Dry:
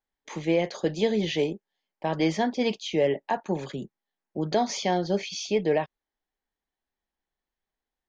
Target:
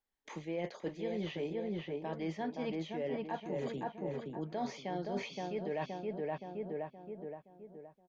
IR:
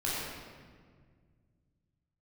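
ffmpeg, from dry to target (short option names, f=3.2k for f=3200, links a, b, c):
-filter_complex "[0:a]acrossover=split=3000[a][b];[b]acompressor=threshold=-49dB:ratio=4:attack=1:release=60[c];[a][c]amix=inputs=2:normalize=0,asplit=2[d][e];[e]adelay=521,lowpass=f=2k:p=1,volume=-3.5dB,asplit=2[f][g];[g]adelay=521,lowpass=f=2k:p=1,volume=0.45,asplit=2[h][i];[i]adelay=521,lowpass=f=2k:p=1,volume=0.45,asplit=2[j][k];[k]adelay=521,lowpass=f=2k:p=1,volume=0.45,asplit=2[l][m];[m]adelay=521,lowpass=f=2k:p=1,volume=0.45,asplit=2[n][o];[o]adelay=521,lowpass=f=2k:p=1,volume=0.45[p];[d][f][h][j][l][n][p]amix=inputs=7:normalize=0,areverse,acompressor=threshold=-32dB:ratio=6,areverse,volume=-3dB"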